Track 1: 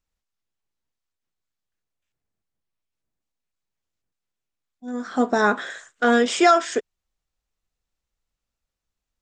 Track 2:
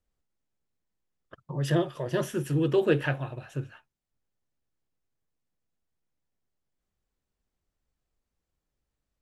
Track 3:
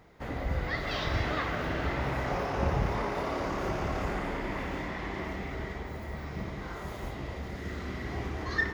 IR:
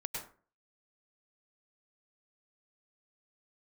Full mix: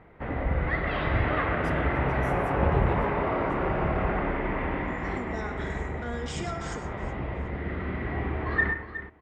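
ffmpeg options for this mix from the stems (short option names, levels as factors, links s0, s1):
-filter_complex "[0:a]alimiter=limit=0.15:level=0:latency=1,volume=0.168,asplit=4[s0][s1][s2][s3];[s1]volume=0.668[s4];[s2]volume=0.178[s5];[1:a]volume=0.188,asplit=2[s6][s7];[s7]volume=0.168[s8];[2:a]lowpass=f=2600:w=0.5412,lowpass=f=2600:w=1.3066,volume=1.12,asplit=3[s9][s10][s11];[s10]volume=0.631[s12];[s11]volume=0.355[s13];[s3]apad=whole_len=385302[s14];[s9][s14]sidechaincompress=threshold=0.00562:ratio=8:attack=16:release=204[s15];[3:a]atrim=start_sample=2205[s16];[s4][s8][s12]amix=inputs=3:normalize=0[s17];[s17][s16]afir=irnorm=-1:irlink=0[s18];[s5][s13]amix=inputs=2:normalize=0,aecho=0:1:366|732|1098|1464:1|0.23|0.0529|0.0122[s19];[s0][s6][s15][s18][s19]amix=inputs=5:normalize=0"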